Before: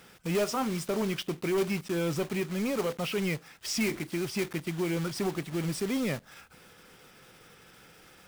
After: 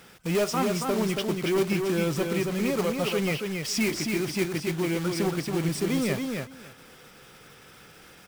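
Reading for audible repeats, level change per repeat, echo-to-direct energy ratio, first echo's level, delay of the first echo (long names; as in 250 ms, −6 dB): 2, −16.5 dB, −4.5 dB, −4.5 dB, 277 ms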